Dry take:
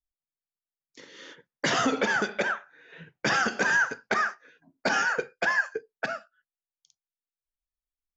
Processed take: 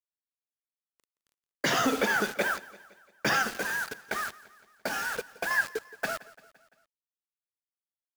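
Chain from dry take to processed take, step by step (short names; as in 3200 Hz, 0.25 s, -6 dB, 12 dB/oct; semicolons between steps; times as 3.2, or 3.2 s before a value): de-hum 77.94 Hz, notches 3; 3.42–5.51 compressor 10:1, threshold -28 dBFS, peak gain reduction 8.5 dB; requantised 6-bit, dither none; gate -39 dBFS, range -20 dB; feedback echo 0.171 s, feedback 56%, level -20 dB; gain -1 dB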